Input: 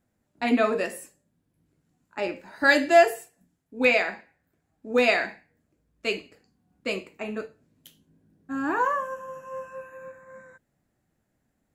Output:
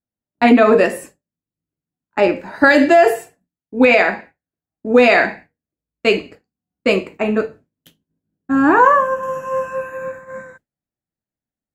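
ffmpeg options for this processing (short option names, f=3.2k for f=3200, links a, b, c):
-af "agate=range=-33dB:threshold=-45dB:ratio=3:detection=peak,asetnsamples=n=441:p=0,asendcmd='9.23 highshelf g -2',highshelf=f=3k:g=-10.5,alimiter=level_in=16.5dB:limit=-1dB:release=50:level=0:latency=1,volume=-1dB"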